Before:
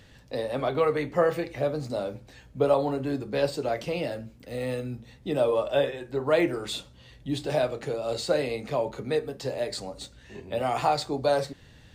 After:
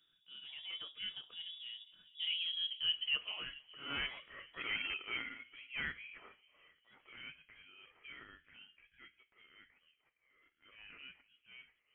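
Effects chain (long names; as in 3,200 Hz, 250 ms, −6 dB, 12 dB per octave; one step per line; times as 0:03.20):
source passing by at 0:04.19, 54 m/s, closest 9.7 metres
low-shelf EQ 100 Hz −9 dB
hard clipping −31.5 dBFS, distortion −15 dB
high-pass filter sweep 110 Hz → 1,300 Hz, 0:01.89–0:03.46
feedback echo with a band-pass in the loop 436 ms, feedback 67%, band-pass 560 Hz, level −21.5 dB
transient designer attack −8 dB, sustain −2 dB
bad sample-rate conversion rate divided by 8×, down filtered, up hold
voice inversion scrambler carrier 3,600 Hz
level +8 dB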